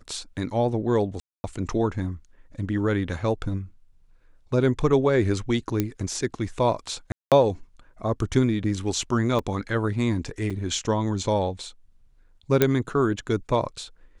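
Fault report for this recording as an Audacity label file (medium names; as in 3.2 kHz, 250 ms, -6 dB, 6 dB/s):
1.200000	1.440000	dropout 240 ms
5.800000	5.800000	pop -10 dBFS
7.120000	7.320000	dropout 197 ms
9.390000	9.390000	dropout 3.4 ms
10.500000	10.510000	dropout 5 ms
12.620000	12.620000	pop -4 dBFS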